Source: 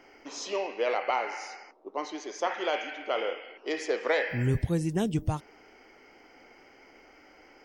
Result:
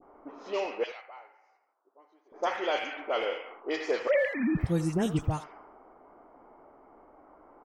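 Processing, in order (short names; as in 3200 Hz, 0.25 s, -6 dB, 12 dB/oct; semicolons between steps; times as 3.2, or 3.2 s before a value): 4.07–4.57 sine-wave speech; band noise 600–1400 Hz -52 dBFS; 0.83–2.32 differentiator; dispersion highs, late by 41 ms, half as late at 1800 Hz; speakerphone echo 80 ms, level -13 dB; low-pass opened by the level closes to 480 Hz, open at -26 dBFS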